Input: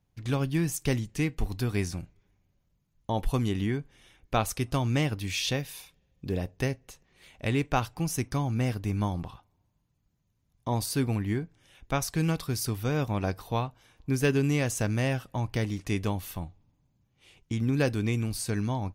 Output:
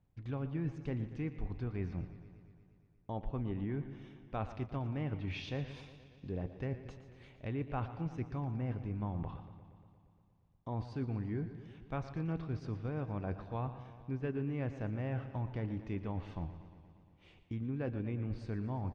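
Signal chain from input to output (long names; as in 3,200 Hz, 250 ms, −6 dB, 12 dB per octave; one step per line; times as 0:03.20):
head-to-tape spacing loss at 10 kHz 28 dB
reversed playback
downward compressor 4 to 1, threshold −37 dBFS, peak gain reduction 14 dB
reversed playback
single-tap delay 145 ms −17.5 dB
treble cut that deepens with the level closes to 2,500 Hz, closed at −34.5 dBFS
feedback echo with a swinging delay time 117 ms, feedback 72%, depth 82 cents, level −14 dB
level +1 dB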